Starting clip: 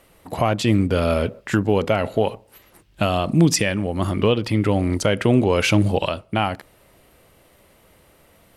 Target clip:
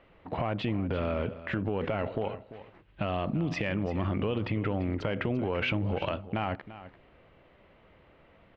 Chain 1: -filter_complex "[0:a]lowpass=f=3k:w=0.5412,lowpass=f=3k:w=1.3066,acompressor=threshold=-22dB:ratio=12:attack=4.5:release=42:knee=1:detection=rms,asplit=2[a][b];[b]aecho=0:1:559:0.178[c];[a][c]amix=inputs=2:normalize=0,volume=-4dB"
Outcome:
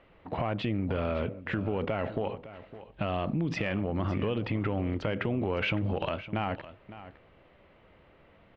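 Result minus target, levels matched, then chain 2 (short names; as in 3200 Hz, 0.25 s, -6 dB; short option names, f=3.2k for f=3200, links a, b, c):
echo 0.217 s late
-filter_complex "[0:a]lowpass=f=3k:w=0.5412,lowpass=f=3k:w=1.3066,acompressor=threshold=-22dB:ratio=12:attack=4.5:release=42:knee=1:detection=rms,asplit=2[a][b];[b]aecho=0:1:342:0.178[c];[a][c]amix=inputs=2:normalize=0,volume=-4dB"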